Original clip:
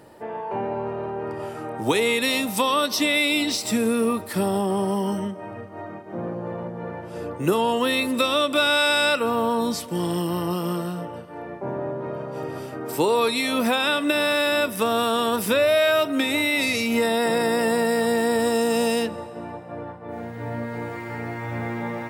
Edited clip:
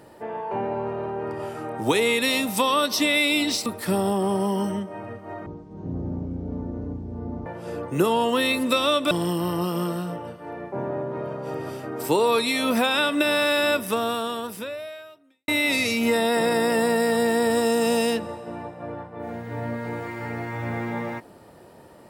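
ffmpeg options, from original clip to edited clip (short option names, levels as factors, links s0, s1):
-filter_complex "[0:a]asplit=6[s0][s1][s2][s3][s4][s5];[s0]atrim=end=3.662[s6];[s1]atrim=start=4.138:end=5.944[s7];[s2]atrim=start=5.94:end=6.94,asetpts=PTS-STARTPTS,asetrate=22050,aresample=44100[s8];[s3]atrim=start=6.936:end=8.592[s9];[s4]atrim=start=9.998:end=16.37,asetpts=PTS-STARTPTS,afade=t=out:st=4.652:d=1.72:c=qua[s10];[s5]atrim=start=16.37,asetpts=PTS-STARTPTS,afade=t=in:d=0.004:c=hsin[s11];[s6][s7]acrossfade=d=0.004:c1=hsin:c2=hsin[s12];[s12][s8]acrossfade=d=0.004:c1=hsin:c2=hsin[s13];[s13][s9]acrossfade=d=0.004:c1=hsin:c2=hsin[s14];[s10][s11]concat=n=2:v=0:a=1[s15];[s14][s15]acrossfade=d=0.004:c1=hsin:c2=hsin"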